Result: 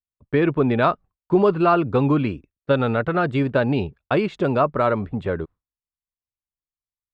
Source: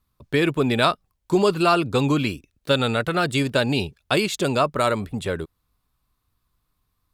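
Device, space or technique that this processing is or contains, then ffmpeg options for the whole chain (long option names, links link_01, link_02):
hearing-loss simulation: -af "lowpass=1600,agate=range=-33dB:threshold=-38dB:ratio=3:detection=peak,volume=2dB"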